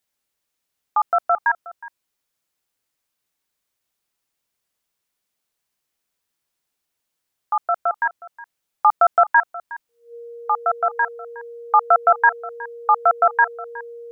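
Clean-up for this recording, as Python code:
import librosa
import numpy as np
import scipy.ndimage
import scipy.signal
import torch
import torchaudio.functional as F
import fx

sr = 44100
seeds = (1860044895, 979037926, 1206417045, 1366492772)

y = fx.notch(x, sr, hz=470.0, q=30.0)
y = fx.fix_echo_inverse(y, sr, delay_ms=365, level_db=-18.5)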